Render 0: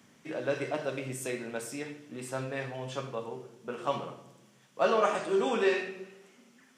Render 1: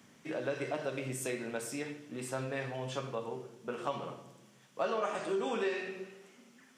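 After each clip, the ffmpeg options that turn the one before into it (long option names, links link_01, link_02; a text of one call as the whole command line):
ffmpeg -i in.wav -af "acompressor=threshold=-32dB:ratio=3" out.wav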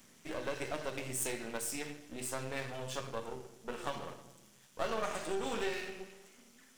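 ffmpeg -i in.wav -af "aeval=exprs='if(lt(val(0),0),0.251*val(0),val(0))':channel_layout=same,highshelf=frequency=4800:gain=11" out.wav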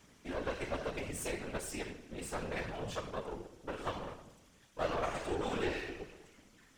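ffmpeg -i in.wav -af "lowpass=frequency=3700:poles=1,afftfilt=real='hypot(re,im)*cos(2*PI*random(0))':imag='hypot(re,im)*sin(2*PI*random(1))':win_size=512:overlap=0.75,volume=7dB" out.wav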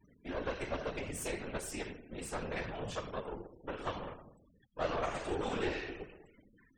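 ffmpeg -i in.wav -af "afftfilt=real='re*gte(hypot(re,im),0.00158)':imag='im*gte(hypot(re,im),0.00158)':win_size=1024:overlap=0.75" out.wav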